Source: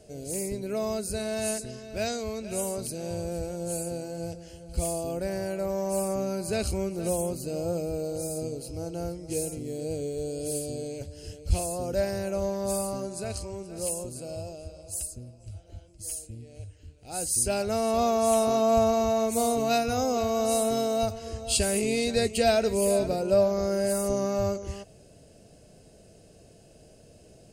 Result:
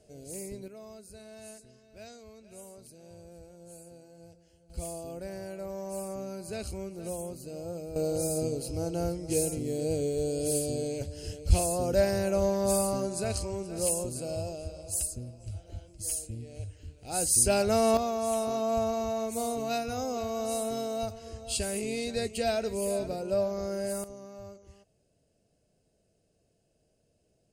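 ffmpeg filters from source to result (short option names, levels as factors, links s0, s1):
-af "asetnsamples=n=441:p=0,asendcmd='0.68 volume volume -17.5dB;4.7 volume volume -8.5dB;7.96 volume volume 2.5dB;17.97 volume volume -6.5dB;24.04 volume volume -18.5dB',volume=0.398"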